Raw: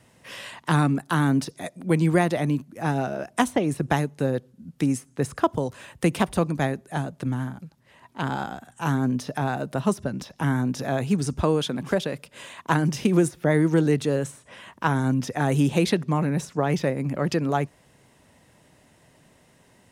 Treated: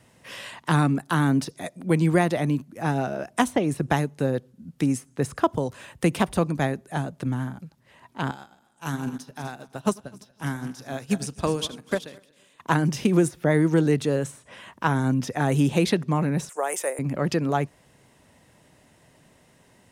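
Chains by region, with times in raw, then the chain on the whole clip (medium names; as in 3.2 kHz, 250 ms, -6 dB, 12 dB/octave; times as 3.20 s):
8.31–12.60 s: backward echo that repeats 125 ms, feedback 66%, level -10.5 dB + treble shelf 2.4 kHz +10 dB + upward expansion 2.5:1, over -33 dBFS
16.49–16.99 s: high-pass 470 Hz 24 dB/octave + resonant high shelf 6.2 kHz +12.5 dB, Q 3
whole clip: none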